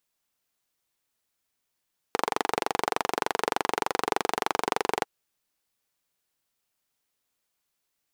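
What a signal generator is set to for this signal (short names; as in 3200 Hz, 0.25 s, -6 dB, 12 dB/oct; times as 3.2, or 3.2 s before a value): single-cylinder engine model, steady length 2.90 s, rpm 2800, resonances 450/800 Hz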